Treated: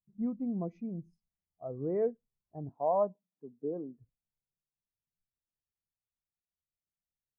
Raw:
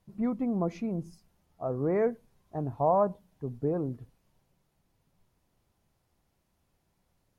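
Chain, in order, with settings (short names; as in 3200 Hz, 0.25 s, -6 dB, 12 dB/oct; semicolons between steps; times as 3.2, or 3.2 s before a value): 2.69–3.98 HPF 180 Hz 24 dB/oct; spectral expander 1.5:1; gain -4.5 dB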